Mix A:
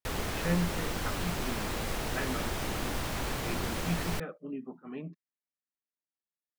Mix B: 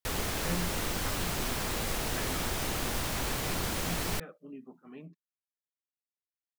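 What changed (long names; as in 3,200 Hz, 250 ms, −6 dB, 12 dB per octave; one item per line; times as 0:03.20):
speech −7.0 dB
master: add high-shelf EQ 4,000 Hz +6.5 dB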